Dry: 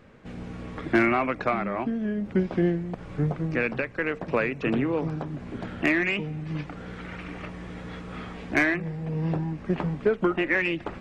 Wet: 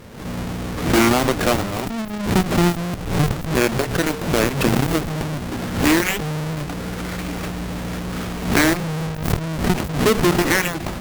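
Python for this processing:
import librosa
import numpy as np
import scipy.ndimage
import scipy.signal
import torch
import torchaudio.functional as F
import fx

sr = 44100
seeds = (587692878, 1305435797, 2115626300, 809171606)

y = fx.halfwave_hold(x, sr)
y = fx.cheby_harmonics(y, sr, harmonics=(7,), levels_db=(-7,), full_scale_db=-12.0)
y = fx.pre_swell(y, sr, db_per_s=84.0)
y = y * librosa.db_to_amplitude(1.0)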